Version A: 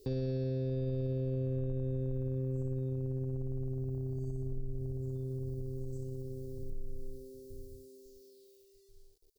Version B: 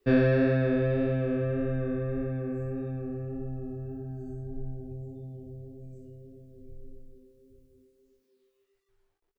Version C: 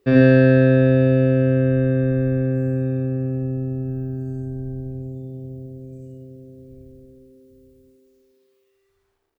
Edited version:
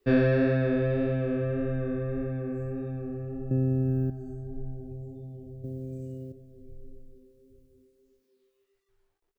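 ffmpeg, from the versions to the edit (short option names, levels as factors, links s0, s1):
-filter_complex "[2:a]asplit=2[s0][s1];[1:a]asplit=3[s2][s3][s4];[s2]atrim=end=3.512[s5];[s0]atrim=start=3.508:end=4.102[s6];[s3]atrim=start=4.098:end=5.642[s7];[s1]atrim=start=5.638:end=6.322[s8];[s4]atrim=start=6.318[s9];[s5][s6]acrossfade=d=0.004:c1=hsin:c2=hsin[s10];[s10][s7]acrossfade=d=0.004:c1=hsin:c2=hsin[s11];[s11][s8]acrossfade=d=0.004:c1=hsin:c2=hsin[s12];[s12][s9]acrossfade=d=0.004:c1=hsin:c2=hsin"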